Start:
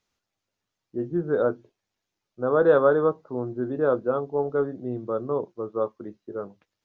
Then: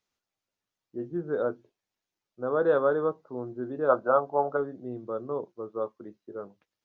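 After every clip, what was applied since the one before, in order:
gain on a spectral selection 0:03.90–0:04.57, 520–1,600 Hz +12 dB
low-shelf EQ 120 Hz −6.5 dB
level −5 dB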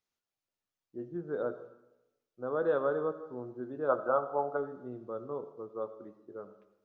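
comb and all-pass reverb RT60 0.95 s, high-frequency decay 0.85×, pre-delay 35 ms, DRR 12 dB
level −6 dB

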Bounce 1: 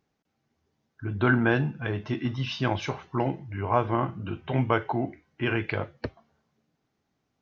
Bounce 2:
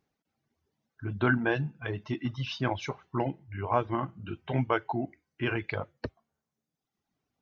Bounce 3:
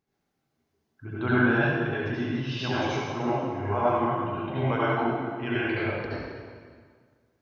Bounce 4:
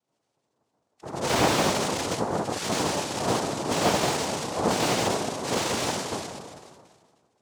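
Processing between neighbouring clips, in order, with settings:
reverb reduction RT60 1.2 s; level −2.5 dB
convolution reverb RT60 1.8 s, pre-delay 63 ms, DRR −9.5 dB; level −5 dB
spectral magnitudes quantised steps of 30 dB; cochlear-implant simulation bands 2; slew-rate limiting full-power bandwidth 160 Hz; level +2 dB

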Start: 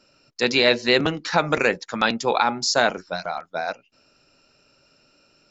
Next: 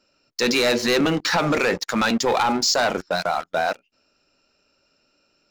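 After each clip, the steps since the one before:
parametric band 130 Hz −13 dB 0.31 octaves
leveller curve on the samples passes 3
brickwall limiter −13.5 dBFS, peak gain reduction 9 dB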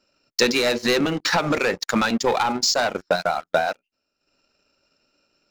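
transient designer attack +8 dB, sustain −10 dB
level −2 dB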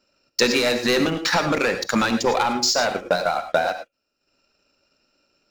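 reverb whose tail is shaped and stops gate 130 ms rising, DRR 8 dB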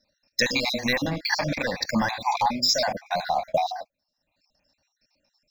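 time-frequency cells dropped at random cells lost 52%
phaser with its sweep stopped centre 2,000 Hz, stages 8
level +2 dB

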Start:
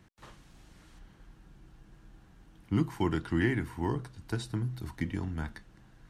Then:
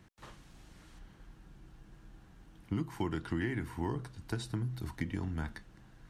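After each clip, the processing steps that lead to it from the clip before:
downward compressor 4 to 1, threshold −31 dBFS, peak gain reduction 8.5 dB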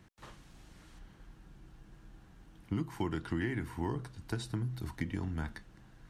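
no processing that can be heard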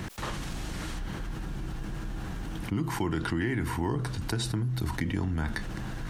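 envelope flattener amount 70%
level +3.5 dB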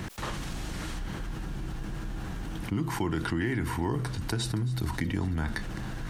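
delay with a high-pass on its return 271 ms, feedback 65%, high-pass 2,200 Hz, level −17.5 dB

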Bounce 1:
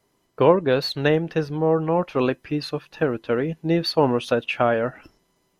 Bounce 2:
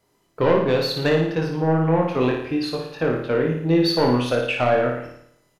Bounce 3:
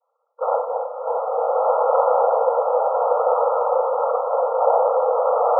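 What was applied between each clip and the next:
soft clipping −12.5 dBFS, distortion −14 dB; double-tracking delay 24 ms −5 dB; on a send: flutter between parallel walls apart 9.7 metres, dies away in 0.7 s
cochlear-implant simulation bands 8; linear-phase brick-wall band-pass 460–1,400 Hz; slow-attack reverb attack 1,580 ms, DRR −8 dB

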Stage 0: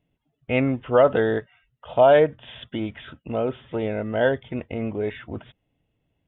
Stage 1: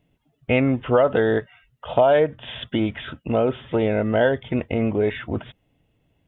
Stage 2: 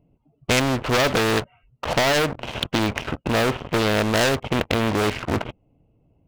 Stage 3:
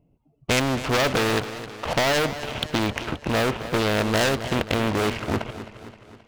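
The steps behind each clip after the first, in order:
downward compressor 3 to 1, threshold −23 dBFS, peak gain reduction 9 dB; level +7 dB
adaptive Wiener filter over 25 samples; leveller curve on the samples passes 3; every bin compressed towards the loudest bin 2 to 1
feedback echo with a swinging delay time 264 ms, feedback 54%, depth 75 cents, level −13 dB; level −2 dB

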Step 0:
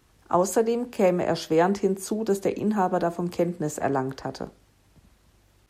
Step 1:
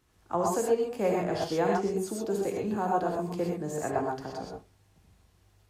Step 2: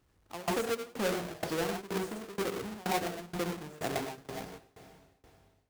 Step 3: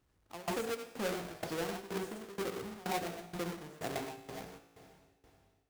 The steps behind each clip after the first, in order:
reverb whose tail is shaped and stops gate 150 ms rising, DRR −1.5 dB; level −8.5 dB
each half-wave held at its own peak; feedback delay with all-pass diffusion 451 ms, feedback 43%, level −16 dB; shaped tremolo saw down 2.1 Hz, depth 95%; level −5.5 dB
tuned comb filter 56 Hz, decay 1.6 s, harmonics all, mix 60%; level +2.5 dB

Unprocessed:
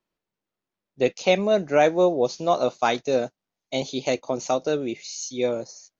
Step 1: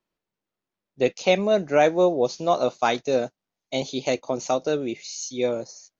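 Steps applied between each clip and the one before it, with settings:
no processing that can be heard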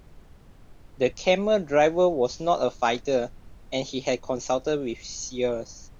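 background noise brown −45 dBFS
level −1.5 dB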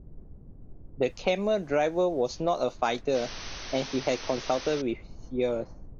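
low-pass that shuts in the quiet parts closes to 310 Hz, open at −19.5 dBFS
downward compressor 3 to 1, threshold −29 dBFS, peak gain reduction 10.5 dB
sound drawn into the spectrogram noise, 0:03.14–0:04.82, 210–6,300 Hz −45 dBFS
level +4 dB

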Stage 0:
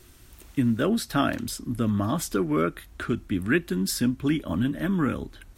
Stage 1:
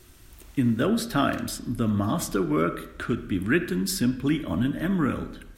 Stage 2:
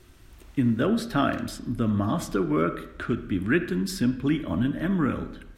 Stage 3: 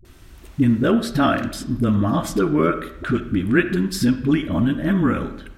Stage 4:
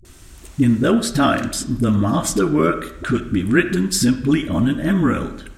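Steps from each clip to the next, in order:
convolution reverb RT60 0.80 s, pre-delay 5 ms, DRR 9.5 dB
high-shelf EQ 5,800 Hz −10.5 dB
all-pass dispersion highs, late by 50 ms, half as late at 360 Hz; level +6 dB
parametric band 7,800 Hz +11 dB 1.1 octaves; level +1.5 dB

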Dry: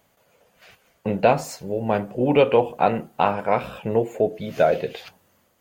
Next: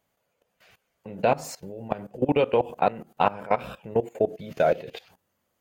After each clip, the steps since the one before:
output level in coarse steps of 19 dB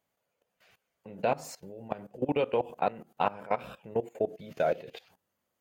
low-shelf EQ 83 Hz −6.5 dB
level −6 dB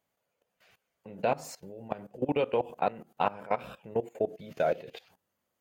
no processing that can be heard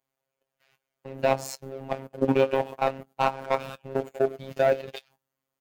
double-tracking delay 21 ms −11.5 dB
leveller curve on the samples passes 2
phases set to zero 134 Hz
level +2 dB

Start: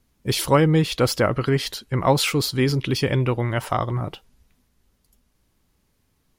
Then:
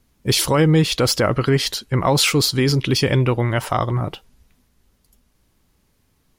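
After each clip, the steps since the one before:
dynamic equaliser 6,100 Hz, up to +4 dB, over −38 dBFS, Q 0.87
boost into a limiter +9.5 dB
level −5.5 dB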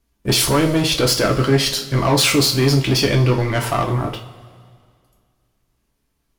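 leveller curve on the samples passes 2
coupled-rooms reverb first 0.32 s, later 2.1 s, from −18 dB, DRR 1 dB
level −5 dB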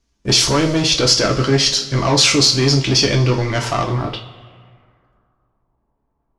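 low-pass filter sweep 6,000 Hz → 890 Hz, 0:03.82–0:05.75

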